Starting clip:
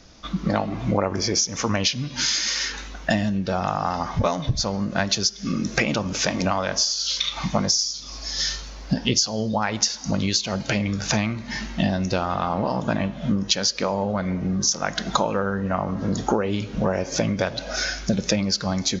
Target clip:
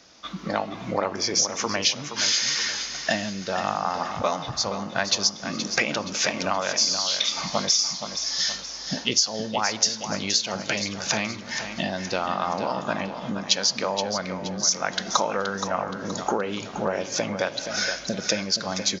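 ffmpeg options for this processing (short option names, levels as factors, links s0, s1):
-filter_complex "[0:a]highpass=f=510:p=1,asplit=2[s0][s1];[s1]aecho=0:1:473|946|1419|1892:0.355|0.142|0.0568|0.0227[s2];[s0][s2]amix=inputs=2:normalize=0"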